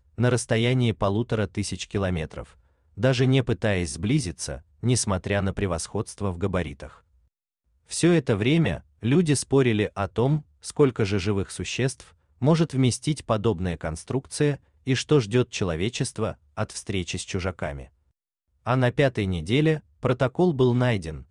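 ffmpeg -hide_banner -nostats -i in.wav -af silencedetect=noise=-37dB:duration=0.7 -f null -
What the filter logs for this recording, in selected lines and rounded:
silence_start: 6.93
silence_end: 7.91 | silence_duration: 0.97
silence_start: 17.84
silence_end: 18.66 | silence_duration: 0.82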